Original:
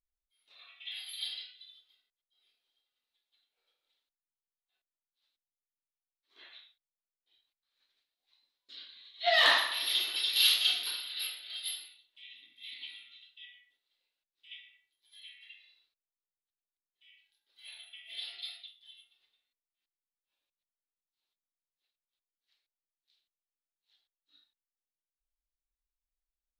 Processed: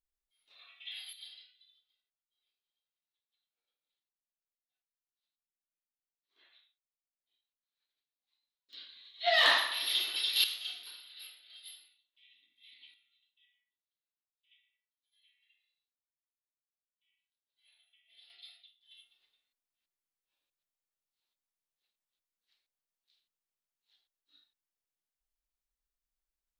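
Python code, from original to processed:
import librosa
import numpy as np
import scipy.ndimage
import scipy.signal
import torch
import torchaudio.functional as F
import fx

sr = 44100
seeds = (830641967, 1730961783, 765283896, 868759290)

y = fx.gain(x, sr, db=fx.steps((0.0, -2.0), (1.13, -12.0), (8.73, -1.0), (10.44, -12.5), (12.94, -20.0), (18.3, -11.0), (18.91, -0.5)))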